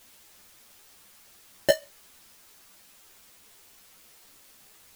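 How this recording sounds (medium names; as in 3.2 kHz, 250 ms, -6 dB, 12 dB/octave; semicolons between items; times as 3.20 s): aliases and images of a low sample rate 1.2 kHz, jitter 0%; chopped level 3.3 Hz, depth 60%; a quantiser's noise floor 10-bit, dither triangular; a shimmering, thickened sound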